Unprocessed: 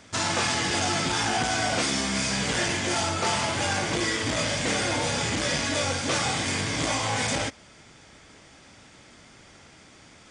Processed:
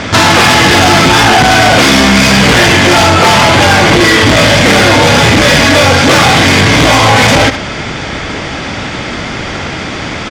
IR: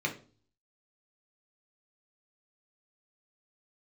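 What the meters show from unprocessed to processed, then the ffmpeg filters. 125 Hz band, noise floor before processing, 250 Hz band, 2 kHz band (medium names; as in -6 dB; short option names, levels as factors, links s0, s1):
+22.0 dB, -52 dBFS, +21.5 dB, +21.5 dB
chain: -af "lowpass=4000,asoftclip=type=tanh:threshold=0.0316,aecho=1:1:71:0.126,alimiter=level_in=56.2:limit=0.891:release=50:level=0:latency=1,volume=0.891"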